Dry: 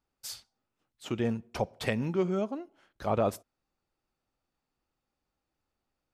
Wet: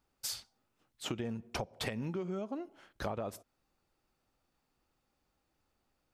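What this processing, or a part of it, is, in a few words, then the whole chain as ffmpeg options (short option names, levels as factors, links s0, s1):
serial compression, leveller first: -af "acompressor=threshold=0.0355:ratio=2.5,acompressor=threshold=0.0112:ratio=10,volume=1.78"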